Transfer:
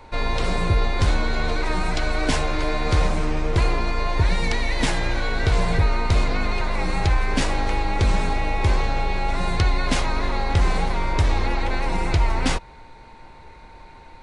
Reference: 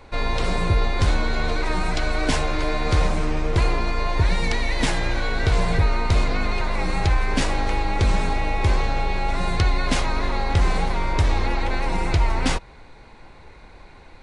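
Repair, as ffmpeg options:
ffmpeg -i in.wav -af "bandreject=frequency=910:width=30" out.wav

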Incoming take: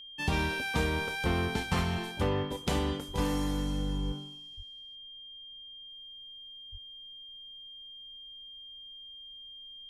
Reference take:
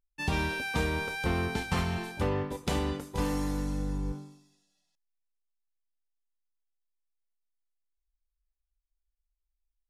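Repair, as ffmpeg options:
ffmpeg -i in.wav -filter_complex "[0:a]bandreject=frequency=3200:width=30,asplit=3[link_01][link_02][link_03];[link_01]afade=type=out:start_time=3.07:duration=0.02[link_04];[link_02]highpass=frequency=140:width=0.5412,highpass=frequency=140:width=1.3066,afade=type=in:start_time=3.07:duration=0.02,afade=type=out:start_time=3.19:duration=0.02[link_05];[link_03]afade=type=in:start_time=3.19:duration=0.02[link_06];[link_04][link_05][link_06]amix=inputs=3:normalize=0,asplit=3[link_07][link_08][link_09];[link_07]afade=type=out:start_time=4.56:duration=0.02[link_10];[link_08]highpass=frequency=140:width=0.5412,highpass=frequency=140:width=1.3066,afade=type=in:start_time=4.56:duration=0.02,afade=type=out:start_time=4.68:duration=0.02[link_11];[link_09]afade=type=in:start_time=4.68:duration=0.02[link_12];[link_10][link_11][link_12]amix=inputs=3:normalize=0,asplit=3[link_13][link_14][link_15];[link_13]afade=type=out:start_time=6.71:duration=0.02[link_16];[link_14]highpass=frequency=140:width=0.5412,highpass=frequency=140:width=1.3066,afade=type=in:start_time=6.71:duration=0.02,afade=type=out:start_time=6.83:duration=0.02[link_17];[link_15]afade=type=in:start_time=6.83:duration=0.02[link_18];[link_16][link_17][link_18]amix=inputs=3:normalize=0,agate=range=-21dB:threshold=-40dB,asetnsamples=nb_out_samples=441:pad=0,asendcmd='5.89 volume volume -9dB',volume=0dB" out.wav

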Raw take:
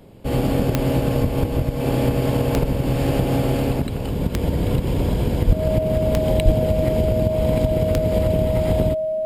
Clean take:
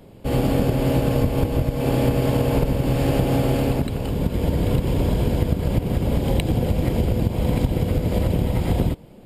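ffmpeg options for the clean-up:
ffmpeg -i in.wav -filter_complex "[0:a]adeclick=threshold=4,bandreject=frequency=630:width=30,asplit=3[link_01][link_02][link_03];[link_01]afade=type=out:start_time=5.46:duration=0.02[link_04];[link_02]highpass=frequency=140:width=0.5412,highpass=frequency=140:width=1.3066,afade=type=in:start_time=5.46:duration=0.02,afade=type=out:start_time=5.58:duration=0.02[link_05];[link_03]afade=type=in:start_time=5.58:duration=0.02[link_06];[link_04][link_05][link_06]amix=inputs=3:normalize=0,asplit=3[link_07][link_08][link_09];[link_07]afade=type=out:start_time=6.44:duration=0.02[link_10];[link_08]highpass=frequency=140:width=0.5412,highpass=frequency=140:width=1.3066,afade=type=in:start_time=6.44:duration=0.02,afade=type=out:start_time=6.56:duration=0.02[link_11];[link_09]afade=type=in:start_time=6.56:duration=0.02[link_12];[link_10][link_11][link_12]amix=inputs=3:normalize=0" out.wav

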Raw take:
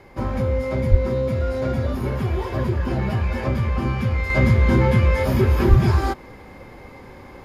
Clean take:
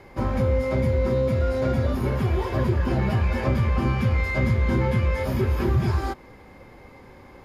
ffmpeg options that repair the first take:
ffmpeg -i in.wav -filter_complex "[0:a]asplit=3[link_01][link_02][link_03];[link_01]afade=type=out:start_time=0.9:duration=0.02[link_04];[link_02]highpass=frequency=140:width=0.5412,highpass=frequency=140:width=1.3066,afade=type=in:start_time=0.9:duration=0.02,afade=type=out:start_time=1.02:duration=0.02[link_05];[link_03]afade=type=in:start_time=1.02:duration=0.02[link_06];[link_04][link_05][link_06]amix=inputs=3:normalize=0,asplit=3[link_07][link_08][link_09];[link_07]afade=type=out:start_time=5.69:duration=0.02[link_10];[link_08]highpass=frequency=140:width=0.5412,highpass=frequency=140:width=1.3066,afade=type=in:start_time=5.69:duration=0.02,afade=type=out:start_time=5.81:duration=0.02[link_11];[link_09]afade=type=in:start_time=5.81:duration=0.02[link_12];[link_10][link_11][link_12]amix=inputs=3:normalize=0,asetnsamples=nb_out_samples=441:pad=0,asendcmd='4.3 volume volume -5.5dB',volume=0dB" out.wav

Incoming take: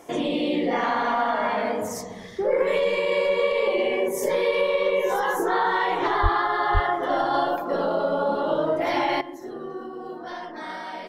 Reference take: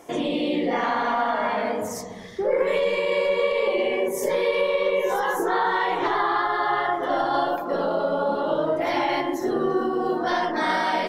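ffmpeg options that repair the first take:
ffmpeg -i in.wav -filter_complex "[0:a]asplit=3[link_01][link_02][link_03];[link_01]afade=type=out:start_time=6.22:duration=0.02[link_04];[link_02]highpass=frequency=140:width=0.5412,highpass=frequency=140:width=1.3066,afade=type=in:start_time=6.22:duration=0.02,afade=type=out:start_time=6.34:duration=0.02[link_05];[link_03]afade=type=in:start_time=6.34:duration=0.02[link_06];[link_04][link_05][link_06]amix=inputs=3:normalize=0,asplit=3[link_07][link_08][link_09];[link_07]afade=type=out:start_time=6.73:duration=0.02[link_10];[link_08]highpass=frequency=140:width=0.5412,highpass=frequency=140:width=1.3066,afade=type=in:start_time=6.73:duration=0.02,afade=type=out:start_time=6.85:duration=0.02[link_11];[link_09]afade=type=in:start_time=6.85:duration=0.02[link_12];[link_10][link_11][link_12]amix=inputs=3:normalize=0,asetnsamples=nb_out_samples=441:pad=0,asendcmd='9.21 volume volume 11.5dB',volume=0dB" out.wav

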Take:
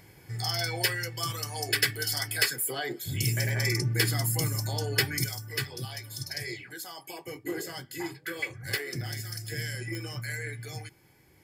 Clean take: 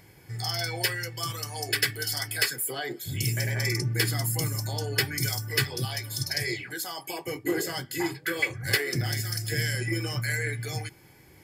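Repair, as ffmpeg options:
ffmpeg -i in.wav -af "adeclick=threshold=4,asetnsamples=nb_out_samples=441:pad=0,asendcmd='5.24 volume volume 6.5dB',volume=0dB" out.wav

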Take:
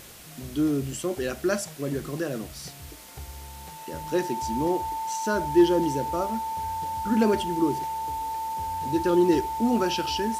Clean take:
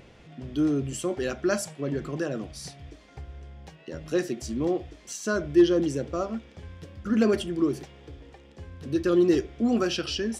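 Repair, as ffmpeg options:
ffmpeg -i in.wav -af "bandreject=frequency=890:width=30,afwtdn=0.005" out.wav

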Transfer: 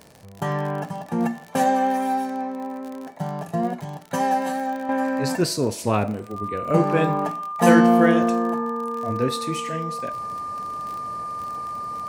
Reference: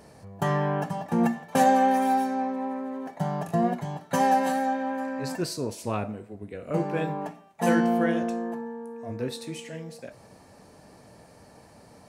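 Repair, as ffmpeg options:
ffmpeg -i in.wav -af "adeclick=threshold=4,bandreject=frequency=1200:width=30,asetnsamples=nb_out_samples=441:pad=0,asendcmd='4.89 volume volume -8dB',volume=0dB" out.wav

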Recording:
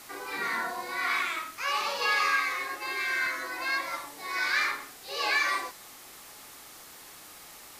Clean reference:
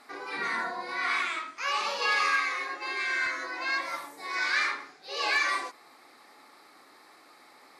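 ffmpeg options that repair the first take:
ffmpeg -i in.wav -af "afwtdn=0.004" out.wav

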